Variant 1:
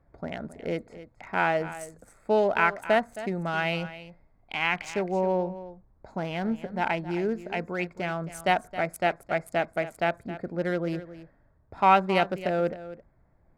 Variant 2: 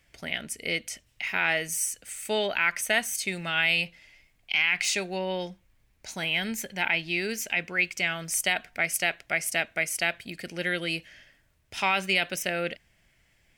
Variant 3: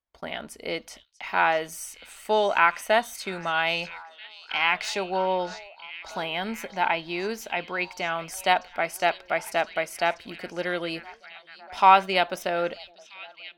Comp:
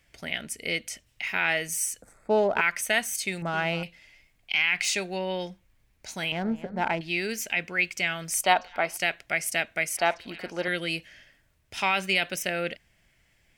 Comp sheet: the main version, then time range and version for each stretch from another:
2
2.02–2.61 from 1
3.42–3.83 from 1
6.32–7.01 from 1
8.44–8.97 from 3
9.97–10.68 from 3

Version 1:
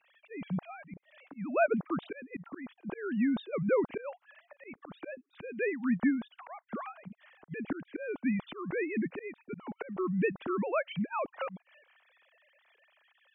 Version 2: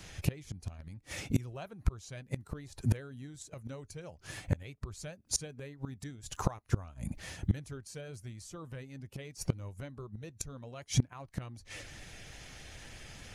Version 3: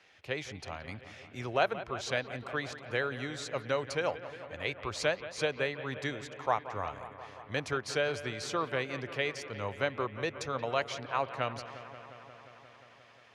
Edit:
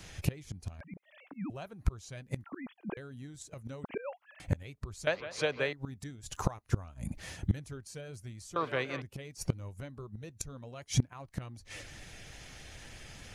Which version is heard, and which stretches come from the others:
2
0.81–1.5 from 1
2.44–2.97 from 1
3.84–4.4 from 1
5.07–5.73 from 3
8.56–9.02 from 3

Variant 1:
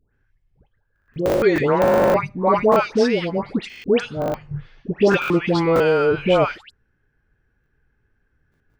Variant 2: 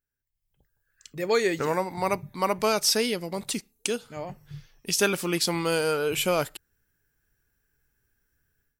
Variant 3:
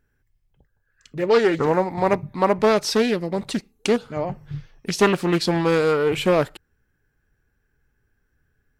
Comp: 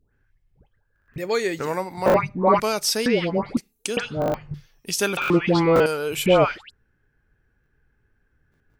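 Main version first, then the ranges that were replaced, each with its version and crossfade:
1
1.18–2.06 from 2
2.6–3.06 from 2
3.57–3.97 from 2
4.54–5.17 from 2
5.86–6.26 from 2
not used: 3

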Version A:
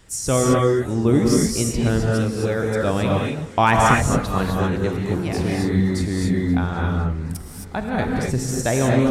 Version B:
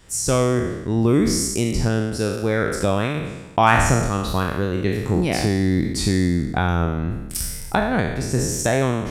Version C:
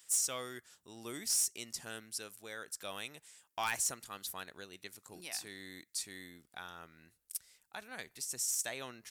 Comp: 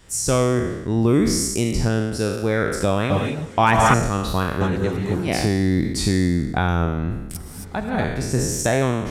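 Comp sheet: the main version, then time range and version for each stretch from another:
B
3.1–3.94 from A
4.61–5.28 from A
7.35–8.04 from A
not used: C

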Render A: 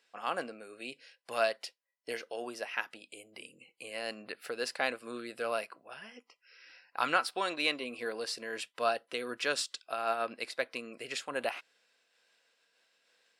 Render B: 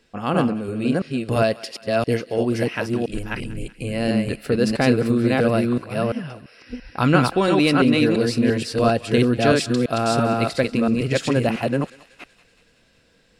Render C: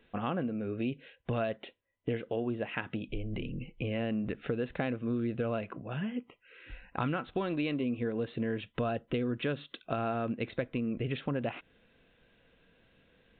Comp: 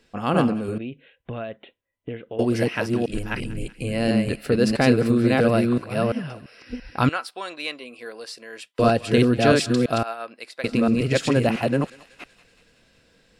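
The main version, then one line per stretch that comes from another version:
B
0.78–2.39 from C
7.09–8.79 from A
10.03–10.64 from A

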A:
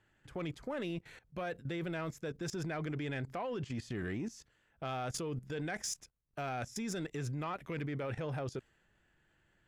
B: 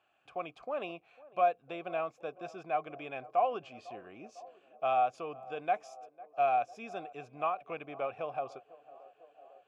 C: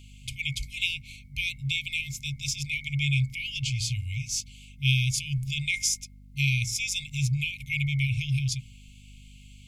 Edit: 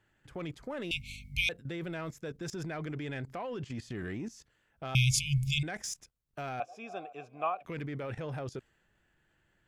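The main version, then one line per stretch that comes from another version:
A
0.91–1.49 from C
4.95–5.63 from C
6.6–7.65 from B

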